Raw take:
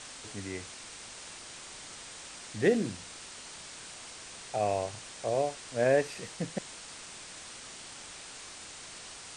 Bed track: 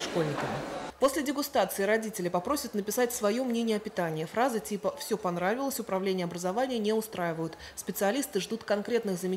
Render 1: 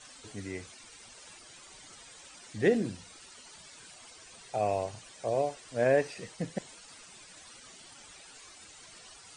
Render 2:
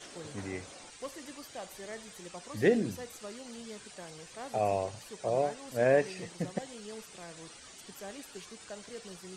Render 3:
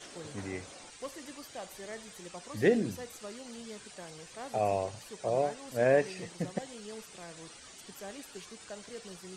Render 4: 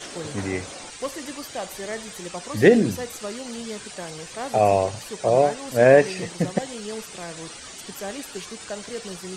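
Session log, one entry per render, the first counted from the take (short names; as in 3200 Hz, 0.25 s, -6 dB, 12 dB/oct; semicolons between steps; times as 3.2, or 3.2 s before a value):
denoiser 13 dB, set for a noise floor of -47 dBFS
add bed track -17 dB
nothing audible
gain +11.5 dB; limiter -3 dBFS, peak gain reduction 1.5 dB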